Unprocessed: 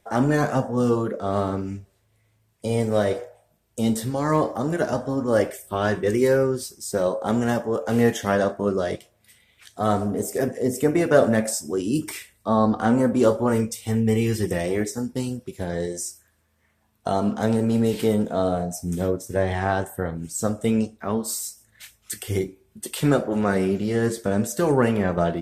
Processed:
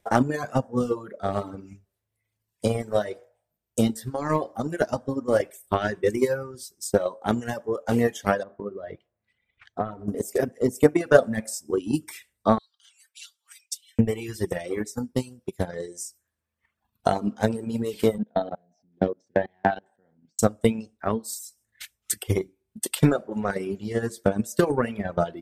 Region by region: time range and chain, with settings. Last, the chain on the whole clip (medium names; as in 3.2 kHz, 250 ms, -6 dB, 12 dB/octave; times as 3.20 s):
8.43–10.08 s: low-pass 1.9 kHz + compression 2.5:1, threshold -26 dBFS
12.58–13.99 s: ladder high-pass 2.8 kHz, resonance 40% + comb 4.4 ms, depth 80%
18.18–20.39 s: level held to a coarse grid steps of 23 dB + cabinet simulation 180–4400 Hz, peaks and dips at 210 Hz +7 dB, 770 Hz +4 dB, 1.2 kHz -8 dB, 1.7 kHz +4 dB + tape noise reduction on one side only decoder only
whole clip: transient shaper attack +12 dB, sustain 0 dB; reverb removal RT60 1.4 s; trim -5.5 dB